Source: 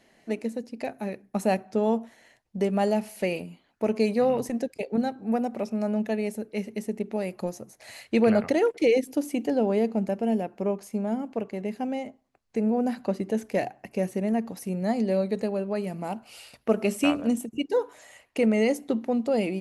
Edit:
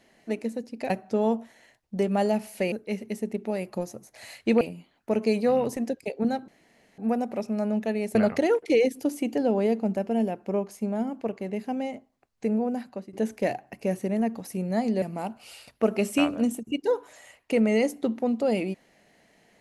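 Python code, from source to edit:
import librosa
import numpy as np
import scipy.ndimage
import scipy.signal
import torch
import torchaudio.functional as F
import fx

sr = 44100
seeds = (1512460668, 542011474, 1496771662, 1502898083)

y = fx.edit(x, sr, fx.cut(start_s=0.9, length_s=0.62),
    fx.insert_room_tone(at_s=5.21, length_s=0.5),
    fx.move(start_s=6.38, length_s=1.89, to_s=3.34),
    fx.fade_out_to(start_s=12.59, length_s=0.66, floor_db=-16.5),
    fx.cut(start_s=15.14, length_s=0.74), tone=tone)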